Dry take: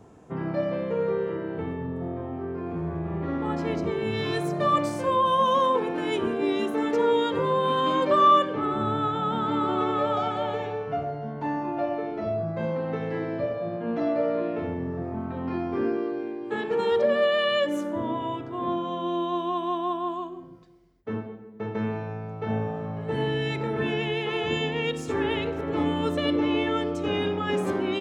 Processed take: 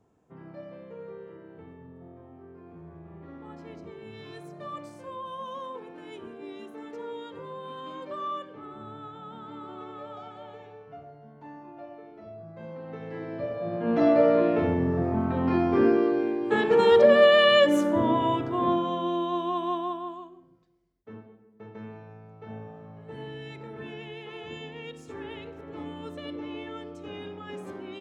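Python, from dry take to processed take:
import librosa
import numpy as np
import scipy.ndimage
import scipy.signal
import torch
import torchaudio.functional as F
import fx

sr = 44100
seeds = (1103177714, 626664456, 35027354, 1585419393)

y = fx.gain(x, sr, db=fx.line((12.36, -16.0), (13.52, -3.5), (14.04, 5.5), (18.47, 5.5), (19.2, -1.0), (19.73, -1.0), (20.44, -13.0)))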